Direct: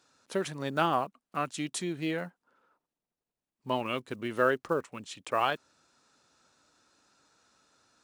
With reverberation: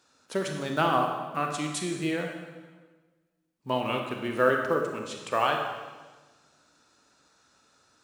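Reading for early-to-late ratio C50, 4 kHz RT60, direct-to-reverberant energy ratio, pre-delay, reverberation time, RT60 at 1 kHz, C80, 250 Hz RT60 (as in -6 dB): 4.0 dB, 1.2 s, 2.5 dB, 27 ms, 1.3 s, 1.3 s, 6.0 dB, 1.5 s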